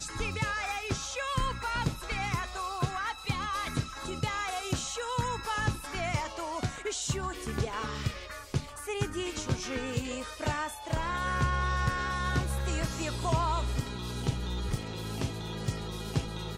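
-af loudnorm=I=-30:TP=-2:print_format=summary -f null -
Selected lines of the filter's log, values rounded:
Input Integrated:    -33.2 LUFS
Input True Peak:     -16.9 dBTP
Input LRA:             3.5 LU
Input Threshold:     -43.2 LUFS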